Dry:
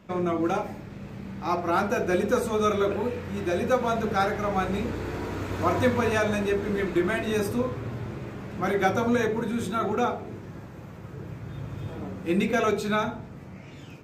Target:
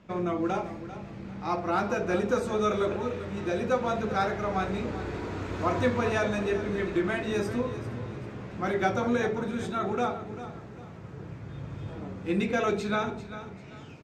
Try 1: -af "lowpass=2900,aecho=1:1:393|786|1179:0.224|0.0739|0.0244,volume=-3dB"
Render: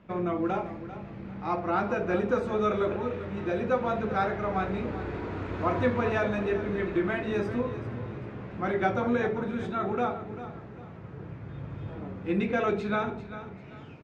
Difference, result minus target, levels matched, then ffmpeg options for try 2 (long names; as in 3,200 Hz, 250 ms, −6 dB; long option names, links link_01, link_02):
8,000 Hz band −12.5 dB
-af "lowpass=7100,aecho=1:1:393|786|1179:0.224|0.0739|0.0244,volume=-3dB"